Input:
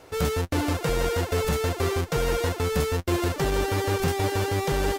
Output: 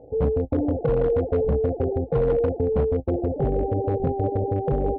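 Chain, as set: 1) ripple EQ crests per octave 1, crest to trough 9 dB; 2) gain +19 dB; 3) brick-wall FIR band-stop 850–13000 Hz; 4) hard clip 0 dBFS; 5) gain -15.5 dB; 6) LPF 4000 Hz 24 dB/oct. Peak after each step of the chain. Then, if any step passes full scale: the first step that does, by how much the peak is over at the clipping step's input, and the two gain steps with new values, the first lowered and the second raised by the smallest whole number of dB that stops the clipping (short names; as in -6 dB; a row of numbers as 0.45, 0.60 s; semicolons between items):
-11.5, +7.5, +7.0, 0.0, -15.5, -15.5 dBFS; step 2, 7.0 dB; step 2 +12 dB, step 5 -8.5 dB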